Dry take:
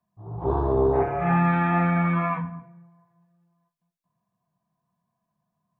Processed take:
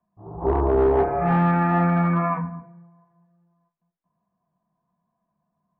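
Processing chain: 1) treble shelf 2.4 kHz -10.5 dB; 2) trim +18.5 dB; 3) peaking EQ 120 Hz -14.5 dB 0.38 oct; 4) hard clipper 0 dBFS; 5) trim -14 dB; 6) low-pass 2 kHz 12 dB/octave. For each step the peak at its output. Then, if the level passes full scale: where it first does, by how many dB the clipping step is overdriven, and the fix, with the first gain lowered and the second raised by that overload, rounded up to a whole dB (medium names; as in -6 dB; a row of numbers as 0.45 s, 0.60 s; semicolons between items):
-13.0 dBFS, +5.5 dBFS, +5.5 dBFS, 0.0 dBFS, -14.0 dBFS, -13.5 dBFS; step 2, 5.5 dB; step 2 +12.5 dB, step 5 -8 dB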